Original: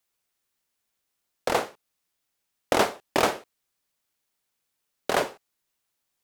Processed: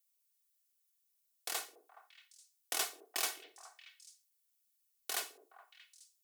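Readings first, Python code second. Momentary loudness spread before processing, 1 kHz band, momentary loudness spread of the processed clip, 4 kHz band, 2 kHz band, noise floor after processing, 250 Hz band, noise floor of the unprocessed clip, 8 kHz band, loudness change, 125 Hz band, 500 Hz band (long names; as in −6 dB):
12 LU, −19.0 dB, 19 LU, −7.0 dB, −13.0 dB, −79 dBFS, −27.5 dB, −80 dBFS, −2.0 dB, −12.0 dB, below −40 dB, −25.0 dB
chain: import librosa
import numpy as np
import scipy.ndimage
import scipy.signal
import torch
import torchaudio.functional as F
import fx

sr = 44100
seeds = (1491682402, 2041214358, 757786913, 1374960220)

y = np.diff(x, prepend=0.0)
y = y + 0.66 * np.pad(y, (int(2.7 * sr / 1000.0), 0))[:len(y)]
y = fx.echo_stepped(y, sr, ms=210, hz=370.0, octaves=1.4, feedback_pct=70, wet_db=-9.5)
y = F.gain(torch.from_numpy(y), -3.5).numpy()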